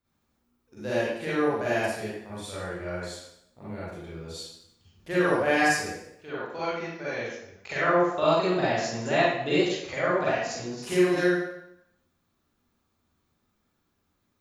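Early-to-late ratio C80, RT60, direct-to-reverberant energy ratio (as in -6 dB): 1.5 dB, 0.75 s, -10.0 dB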